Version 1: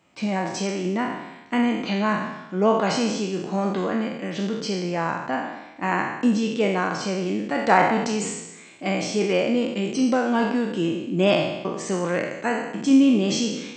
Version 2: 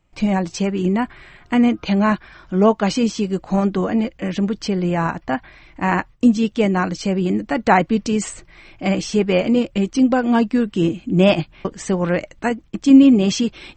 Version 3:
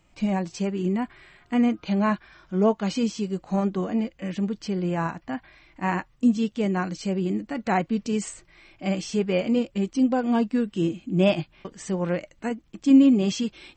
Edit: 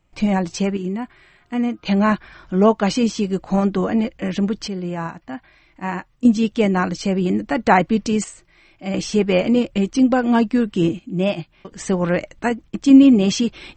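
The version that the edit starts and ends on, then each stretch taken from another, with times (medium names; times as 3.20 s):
2
0.77–1.85 s: from 3
4.68–6.25 s: from 3
8.24–8.94 s: from 3
10.99–11.73 s: from 3
not used: 1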